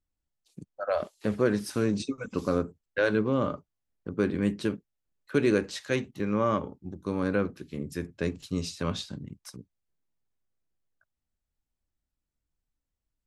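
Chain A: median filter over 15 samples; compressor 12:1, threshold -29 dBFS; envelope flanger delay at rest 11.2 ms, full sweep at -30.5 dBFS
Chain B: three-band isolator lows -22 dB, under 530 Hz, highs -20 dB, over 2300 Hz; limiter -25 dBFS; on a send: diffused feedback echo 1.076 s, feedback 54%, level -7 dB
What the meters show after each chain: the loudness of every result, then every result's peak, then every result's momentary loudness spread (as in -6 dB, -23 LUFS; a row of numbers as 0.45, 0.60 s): -38.0, -39.5 LUFS; -20.5, -23.5 dBFS; 13, 18 LU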